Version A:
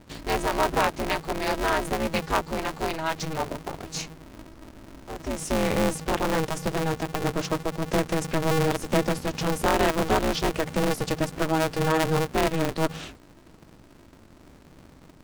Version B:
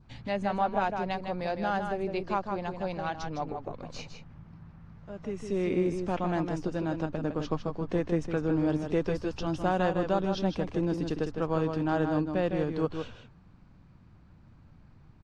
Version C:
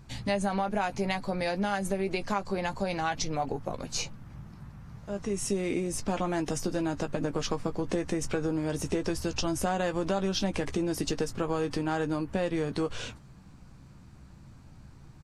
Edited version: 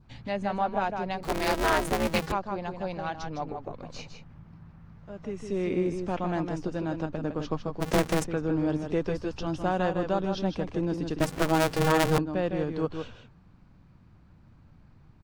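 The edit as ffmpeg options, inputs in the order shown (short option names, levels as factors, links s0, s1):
-filter_complex "[0:a]asplit=3[s0][s1][s2];[1:a]asplit=4[s3][s4][s5][s6];[s3]atrim=end=1.232[s7];[s0]atrim=start=1.228:end=2.322[s8];[s4]atrim=start=2.318:end=7.82[s9];[s1]atrim=start=7.8:end=8.25[s10];[s5]atrim=start=8.23:end=11.202[s11];[s2]atrim=start=11.198:end=12.182[s12];[s6]atrim=start=12.178[s13];[s7][s8]acrossfade=d=0.004:c1=hsin:c2=hsin[s14];[s14][s9]acrossfade=d=0.004:c1=hsin:c2=hsin[s15];[s15][s10]acrossfade=d=0.02:c1=tri:c2=tri[s16];[s16][s11]acrossfade=d=0.02:c1=tri:c2=tri[s17];[s17][s12]acrossfade=d=0.004:c1=hsin:c2=hsin[s18];[s18][s13]acrossfade=d=0.004:c1=hsin:c2=hsin"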